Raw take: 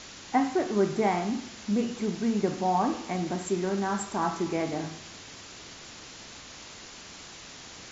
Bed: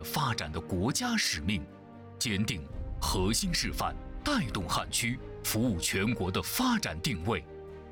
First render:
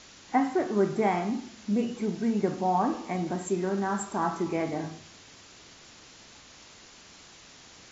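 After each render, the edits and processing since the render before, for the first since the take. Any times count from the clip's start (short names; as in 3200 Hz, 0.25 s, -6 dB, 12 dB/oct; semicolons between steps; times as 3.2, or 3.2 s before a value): noise print and reduce 6 dB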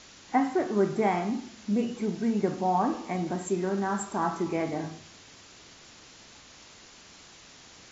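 nothing audible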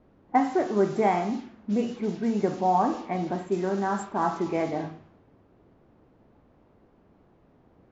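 low-pass opened by the level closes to 490 Hz, open at -23 dBFS; dynamic EQ 660 Hz, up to +4 dB, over -37 dBFS, Q 0.99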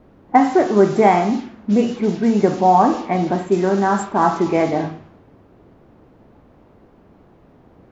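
gain +10 dB; limiter -2 dBFS, peak gain reduction 1.5 dB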